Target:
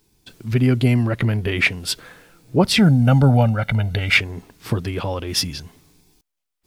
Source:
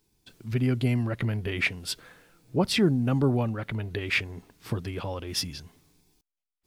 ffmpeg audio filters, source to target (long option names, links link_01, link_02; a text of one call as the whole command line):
ffmpeg -i in.wav -filter_complex "[0:a]asettb=1/sr,asplit=3[link_01][link_02][link_03];[link_01]atrim=end=2.784[link_04];[link_02]atrim=start=2.78:end=4.17,asetpts=PTS-STARTPTS,afade=type=in:duration=0.004:curve=qsin,afade=type=out:start_time=1.386:duration=0.004:curve=qsin,aecho=1:1:1.4:0.85,atrim=end_sample=61299[link_05];[link_03]atrim=start=4.166[link_06];[link_04][link_05]acrossfade=duration=0.004:curve1=hsin:curve2=qsin[link_07];[link_07][link_06]acrossfade=duration=0.004:curve1=qsin:curve2=hsin,volume=8.5dB" out.wav